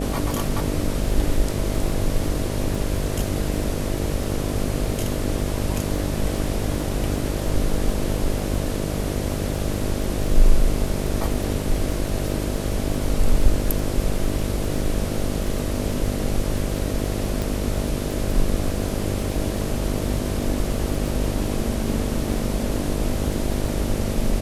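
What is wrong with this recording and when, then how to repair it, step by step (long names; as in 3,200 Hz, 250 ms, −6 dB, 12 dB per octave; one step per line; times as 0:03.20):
mains buzz 50 Hz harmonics 13 −27 dBFS
surface crackle 21 per second −27 dBFS
0:17.42: click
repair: click removal
hum removal 50 Hz, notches 13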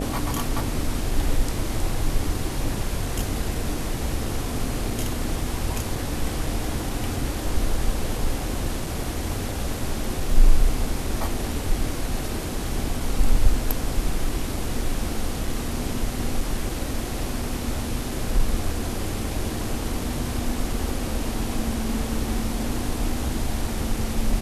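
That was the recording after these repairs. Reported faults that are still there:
none of them is left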